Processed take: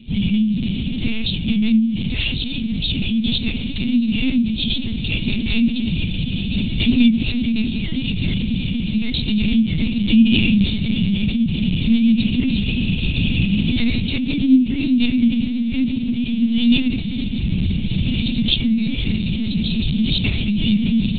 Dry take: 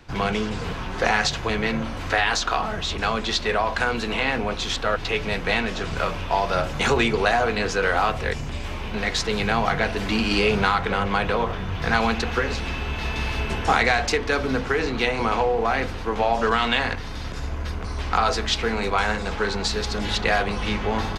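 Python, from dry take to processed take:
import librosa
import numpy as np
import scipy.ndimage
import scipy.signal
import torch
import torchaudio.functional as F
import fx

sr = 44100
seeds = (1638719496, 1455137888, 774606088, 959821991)

y = scipy.signal.sosfilt(scipy.signal.cheby2(4, 50, [520.0, 1500.0], 'bandstop', fs=sr, output='sos'), x)
y = fx.peak_eq(y, sr, hz=250.0, db=11.5, octaves=0.27)
y = fx.echo_diffused(y, sr, ms=1539, feedback_pct=56, wet_db=-12.5)
y = fx.lpc_vocoder(y, sr, seeds[0], excitation='pitch_kept', order=8)
y = y * 10.0 ** (8.5 / 20.0)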